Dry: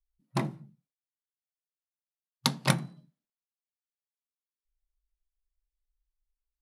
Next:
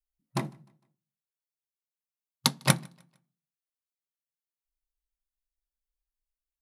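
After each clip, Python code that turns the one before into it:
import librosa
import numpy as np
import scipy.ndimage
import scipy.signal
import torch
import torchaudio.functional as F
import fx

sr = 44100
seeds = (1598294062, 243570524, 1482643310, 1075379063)

y = fx.high_shelf(x, sr, hz=7800.0, db=7.5)
y = fx.echo_feedback(y, sr, ms=152, feedback_pct=41, wet_db=-21.5)
y = fx.upward_expand(y, sr, threshold_db=-40.0, expansion=1.5)
y = y * librosa.db_to_amplitude(2.5)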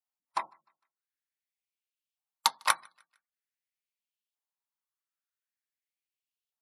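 y = scipy.signal.sosfilt(scipy.signal.butter(2, 120.0, 'highpass', fs=sr, output='sos'), x)
y = fx.spec_gate(y, sr, threshold_db=-30, keep='strong')
y = fx.filter_lfo_highpass(y, sr, shape='saw_up', hz=0.46, low_hz=750.0, high_hz=3200.0, q=3.2)
y = y * librosa.db_to_amplitude(-3.0)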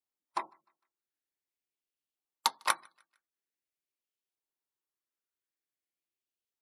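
y = fx.peak_eq(x, sr, hz=350.0, db=11.0, octaves=0.88)
y = y * librosa.db_to_amplitude(-3.5)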